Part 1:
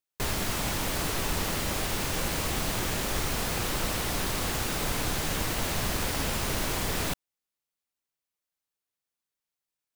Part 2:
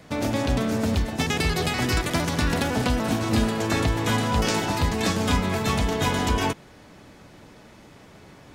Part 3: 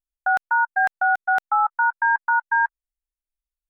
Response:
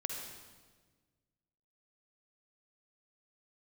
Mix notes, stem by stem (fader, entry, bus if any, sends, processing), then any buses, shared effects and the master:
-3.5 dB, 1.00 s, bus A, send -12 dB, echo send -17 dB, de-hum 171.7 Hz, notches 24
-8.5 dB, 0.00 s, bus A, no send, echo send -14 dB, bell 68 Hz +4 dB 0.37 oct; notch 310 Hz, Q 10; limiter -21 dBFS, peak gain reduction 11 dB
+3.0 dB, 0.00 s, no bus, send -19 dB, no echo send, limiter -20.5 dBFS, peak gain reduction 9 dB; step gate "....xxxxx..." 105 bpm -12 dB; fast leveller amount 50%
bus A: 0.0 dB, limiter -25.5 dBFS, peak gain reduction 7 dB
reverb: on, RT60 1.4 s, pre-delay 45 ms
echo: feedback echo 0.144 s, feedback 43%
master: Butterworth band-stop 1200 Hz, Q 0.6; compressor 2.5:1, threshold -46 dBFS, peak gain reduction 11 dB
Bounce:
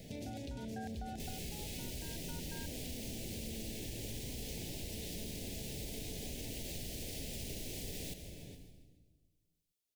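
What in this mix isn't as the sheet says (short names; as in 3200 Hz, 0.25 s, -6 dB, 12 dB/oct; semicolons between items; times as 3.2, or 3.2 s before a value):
stem 1: send -12 dB -> -4.5 dB; stem 2 -8.5 dB -> -1.5 dB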